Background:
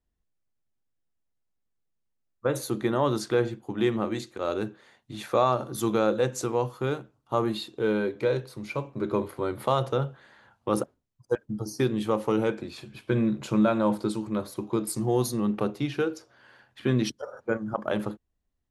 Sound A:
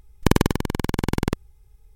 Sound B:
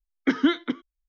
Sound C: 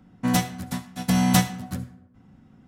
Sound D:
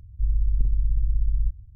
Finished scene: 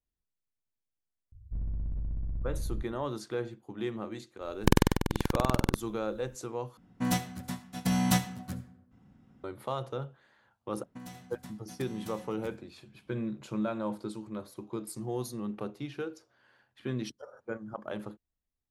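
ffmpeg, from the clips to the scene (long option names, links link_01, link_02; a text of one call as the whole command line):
ffmpeg -i bed.wav -i cue0.wav -i cue1.wav -i cue2.wav -i cue3.wav -filter_complex "[3:a]asplit=2[link_01][link_02];[0:a]volume=-10dB[link_03];[4:a]asoftclip=type=hard:threshold=-23dB[link_04];[link_02]acompressor=threshold=-34dB:ratio=10:attack=86:release=24:knee=1:detection=peak[link_05];[link_03]asplit=2[link_06][link_07];[link_06]atrim=end=6.774[link_08];[link_01]atrim=end=2.67,asetpts=PTS-STARTPTS,volume=-7dB[link_09];[link_07]atrim=start=9.436[link_10];[link_04]atrim=end=1.75,asetpts=PTS-STARTPTS,volume=-7.5dB,afade=type=in:duration=0.004:curve=hsin,afade=type=out:start_time=1.746:duration=0.004:curve=hsin,adelay=1320[link_11];[1:a]atrim=end=1.95,asetpts=PTS-STARTPTS,volume=-5dB,afade=type=in:duration=0.004:curve=hsin,afade=type=out:start_time=1.946:duration=0.004:curve=hsin,adelay=194481S[link_12];[link_05]atrim=end=2.67,asetpts=PTS-STARTPTS,volume=-16.5dB,afade=type=in:duration=0.004:curve=hsin,afade=type=out:start_time=2.666:duration=0.004:curve=hsin,adelay=10720[link_13];[link_08][link_09]acrossfade=duration=0.004:curve1=hsin:curve2=hsin[link_14];[link_14][link_10]acrossfade=duration=0.004:curve1=hsin:curve2=hsin[link_15];[link_15][link_11][link_12][link_13]amix=inputs=4:normalize=0" out.wav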